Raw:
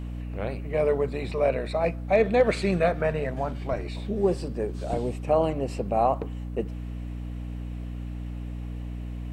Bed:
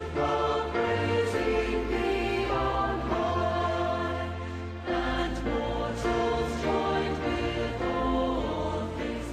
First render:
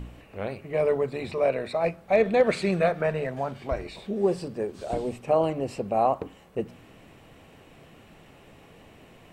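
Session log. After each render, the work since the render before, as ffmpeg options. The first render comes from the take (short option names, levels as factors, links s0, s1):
-af "bandreject=f=60:t=h:w=4,bandreject=f=120:t=h:w=4,bandreject=f=180:t=h:w=4,bandreject=f=240:t=h:w=4,bandreject=f=300:t=h:w=4"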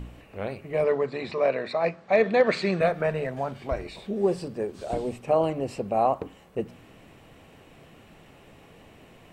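-filter_complex "[0:a]asettb=1/sr,asplit=3[s0][s1][s2];[s0]atrim=end=0.844[s3];[s1]atrim=start=0.84:end=2.81,asetpts=PTS-STARTPTS,afade=t=in:d=0.004:c=qsin,afade=t=out:st=1.966:d=0.004:c=qsin,highpass=140,equalizer=f=1100:t=q:w=4:g=4,equalizer=f=1800:t=q:w=4:g=5,equalizer=f=4400:t=q:w=4:g=4,lowpass=f=7100:w=0.5412,lowpass=f=7100:w=1.3066[s4];[s2]atrim=start=2.806[s5];[s3][s4]acrossfade=d=0.004:c1=hsin:c2=qsin[s6];[s6][s5]acrossfade=d=0.004:c1=qsin:c2=hsin"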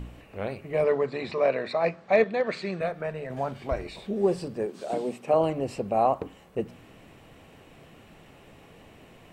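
-filter_complex "[0:a]asettb=1/sr,asplit=3[s0][s1][s2];[s0]atrim=end=4.664[s3];[s1]atrim=start=4.66:end=5.34,asetpts=PTS-STARTPTS,afade=t=in:d=0.004:c=qsin,afade=t=out:st=0.676:d=0.004:c=qsin,highpass=f=160:w=0.5412,highpass=f=160:w=1.3066[s4];[s2]atrim=start=5.336[s5];[s3][s4]acrossfade=d=0.004:c1=hsin:c2=qsin[s6];[s6][s5]acrossfade=d=0.004:c1=qsin:c2=hsin,asplit=3[s7][s8][s9];[s7]atrim=end=2.242[s10];[s8]atrim=start=2.238:end=3.302,asetpts=PTS-STARTPTS,volume=0.473[s11];[s9]atrim=start=3.298[s12];[s10][s11]acrossfade=d=0.004:c1=hsin:c2=hsin[s13];[s13][s12]acrossfade=d=0.004:c1=hsin:c2=hsin"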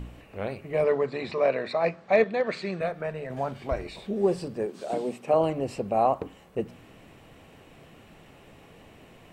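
-af anull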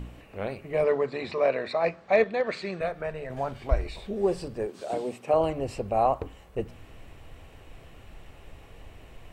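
-af "asubboost=boost=8.5:cutoff=62"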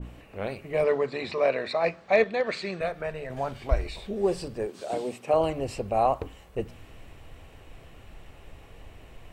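-af "adynamicequalizer=threshold=0.0112:dfrequency=2100:dqfactor=0.7:tfrequency=2100:tqfactor=0.7:attack=5:release=100:ratio=0.375:range=2:mode=boostabove:tftype=highshelf"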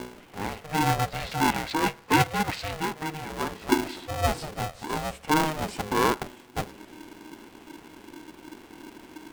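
-af "aeval=exprs='val(0)*sgn(sin(2*PI*310*n/s))':c=same"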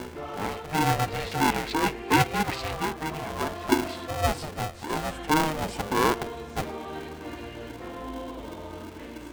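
-filter_complex "[1:a]volume=0.316[s0];[0:a][s0]amix=inputs=2:normalize=0"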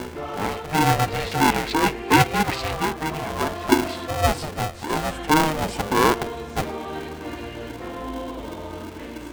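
-af "volume=1.78"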